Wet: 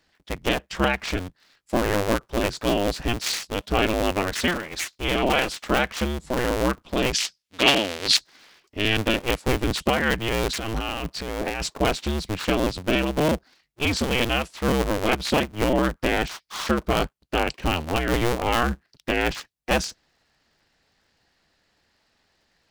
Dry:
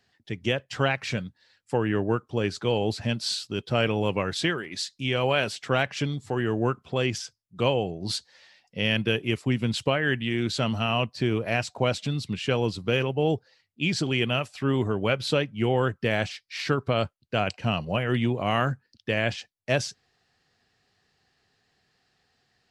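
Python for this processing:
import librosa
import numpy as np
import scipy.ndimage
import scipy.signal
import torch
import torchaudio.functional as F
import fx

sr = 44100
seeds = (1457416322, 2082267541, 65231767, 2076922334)

y = fx.cycle_switch(x, sr, every=2, mode='inverted')
y = fx.weighting(y, sr, curve='D', at=(7.13, 8.17))
y = fx.over_compress(y, sr, threshold_db=-31.0, ratio=-1.0, at=(10.57, 11.7))
y = y * librosa.db_to_amplitude(2.5)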